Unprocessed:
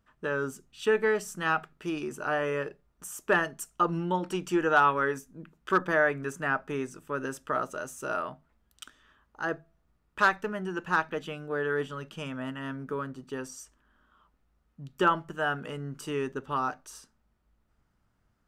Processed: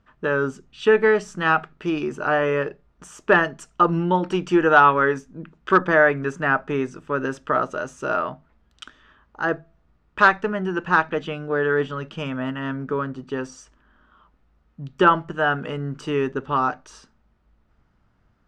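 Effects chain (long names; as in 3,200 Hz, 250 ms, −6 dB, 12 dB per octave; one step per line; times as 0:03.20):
high-frequency loss of the air 130 metres
level +9 dB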